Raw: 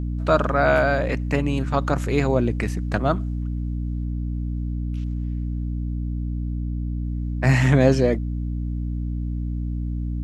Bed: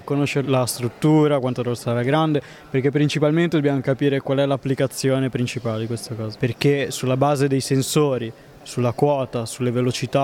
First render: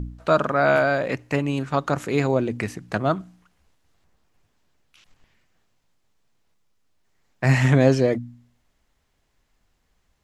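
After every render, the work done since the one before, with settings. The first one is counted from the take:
hum removal 60 Hz, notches 5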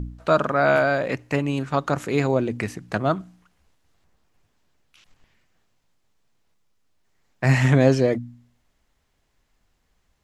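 no processing that can be heard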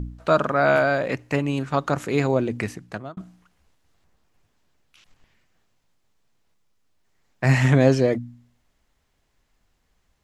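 0:02.66–0:03.17: fade out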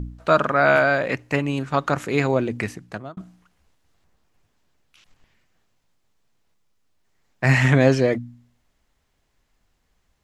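dynamic equaliser 2,000 Hz, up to +5 dB, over −33 dBFS, Q 0.77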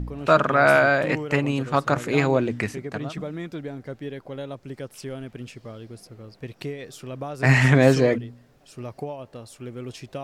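mix in bed −15 dB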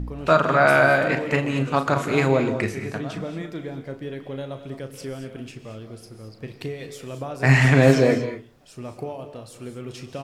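double-tracking delay 37 ms −10 dB
reverb whose tail is shaped and stops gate 250 ms rising, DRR 8 dB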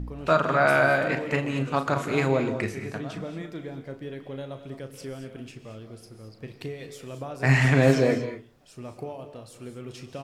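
level −4 dB

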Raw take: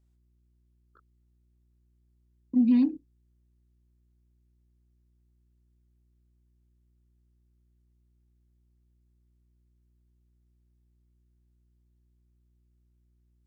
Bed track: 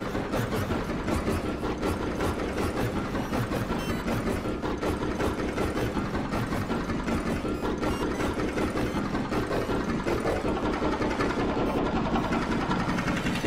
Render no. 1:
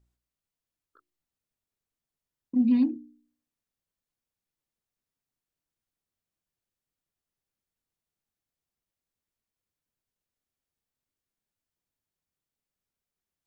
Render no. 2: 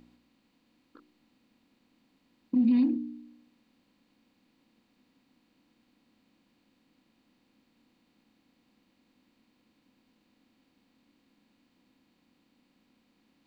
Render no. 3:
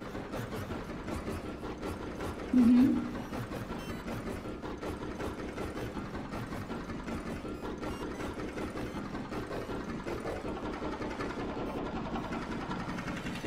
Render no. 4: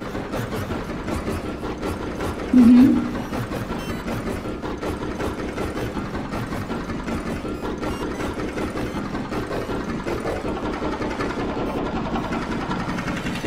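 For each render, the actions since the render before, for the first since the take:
hum removal 60 Hz, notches 6
compressor on every frequency bin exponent 0.6; brickwall limiter −18 dBFS, peak gain reduction 4 dB
mix in bed track −10 dB
level +11.5 dB

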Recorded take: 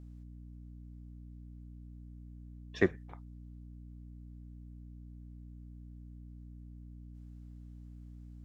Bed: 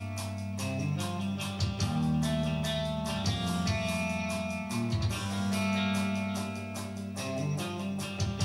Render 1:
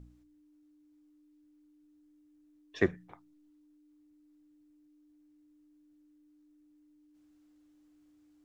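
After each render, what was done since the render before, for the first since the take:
hum removal 60 Hz, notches 4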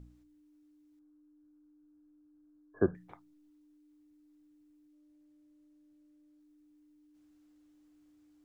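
0:00.99–0:02.95: linear-phase brick-wall low-pass 1,700 Hz
0:04.93–0:06.40: phase distortion by the signal itself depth 0.082 ms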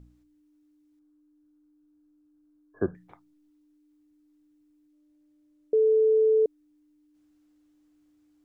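0:05.73–0:06.46: beep over 438 Hz −17.5 dBFS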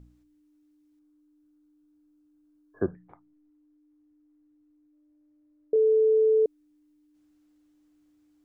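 0:02.83–0:05.76: low-pass filter 1,500 Hz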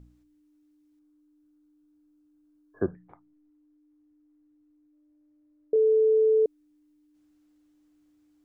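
no processing that can be heard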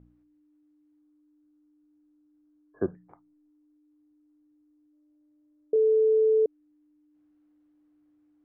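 Bessel low-pass filter 1,500 Hz
low-shelf EQ 70 Hz −11 dB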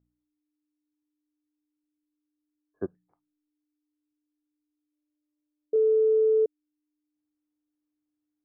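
expander for the loud parts 2.5 to 1, over −33 dBFS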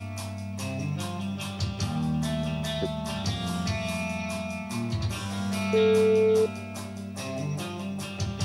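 mix in bed +1 dB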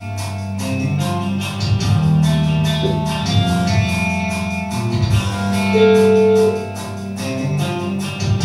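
rectangular room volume 330 cubic metres, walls furnished, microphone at 7.3 metres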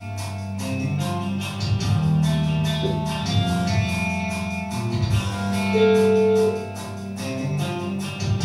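level −5.5 dB

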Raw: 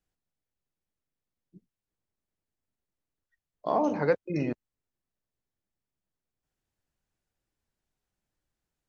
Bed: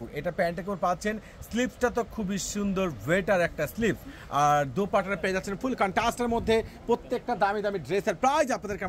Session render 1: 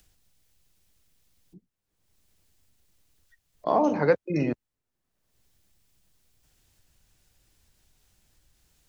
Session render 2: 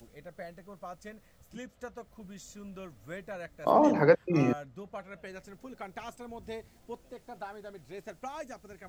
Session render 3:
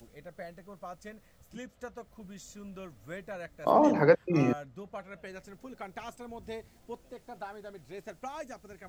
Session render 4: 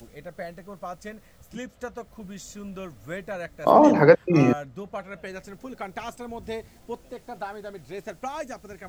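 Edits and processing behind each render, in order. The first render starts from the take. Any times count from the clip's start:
upward compression, threshold −44 dBFS; multiband upward and downward expander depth 40%
mix in bed −17 dB
no processing that can be heard
level +7.5 dB; brickwall limiter −2 dBFS, peak gain reduction 1 dB

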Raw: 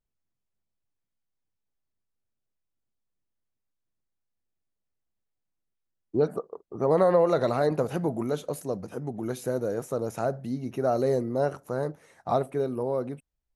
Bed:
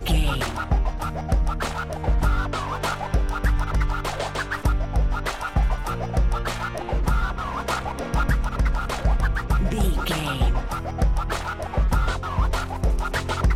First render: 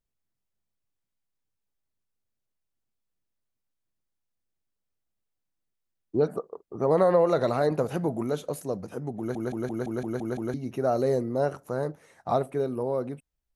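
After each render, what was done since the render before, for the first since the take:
0:09.18: stutter in place 0.17 s, 8 plays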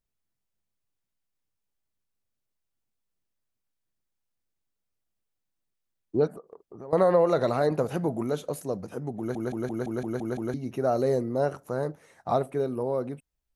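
0:06.27–0:06.93: downward compressor 3 to 1, threshold −43 dBFS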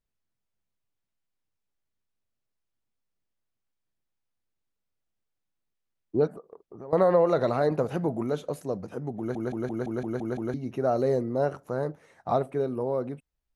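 high-shelf EQ 6,700 Hz −10.5 dB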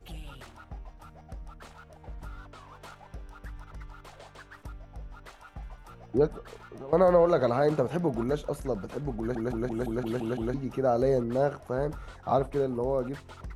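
mix in bed −21.5 dB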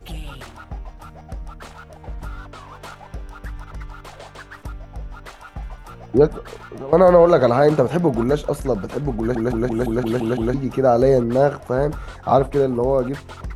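level +10 dB
brickwall limiter −2 dBFS, peak gain reduction 1.5 dB

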